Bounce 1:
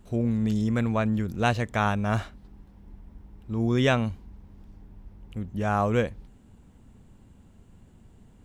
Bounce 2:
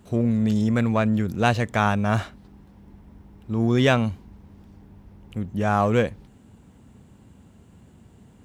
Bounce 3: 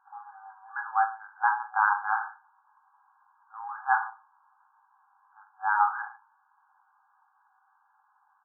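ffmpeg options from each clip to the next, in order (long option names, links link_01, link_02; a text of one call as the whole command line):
ffmpeg -i in.wav -filter_complex "[0:a]asplit=2[link_01][link_02];[link_02]asoftclip=type=hard:threshold=-25dB,volume=-10dB[link_03];[link_01][link_03]amix=inputs=2:normalize=0,highpass=77,volume=2.5dB" out.wav
ffmpeg -i in.wav -af "aecho=1:1:20|44|72.8|107.4|148.8:0.631|0.398|0.251|0.158|0.1,afreqshift=120,afftfilt=real='re*between(b*sr/4096,760,1700)':imag='im*between(b*sr/4096,760,1700)':win_size=4096:overlap=0.75,volume=-1.5dB" out.wav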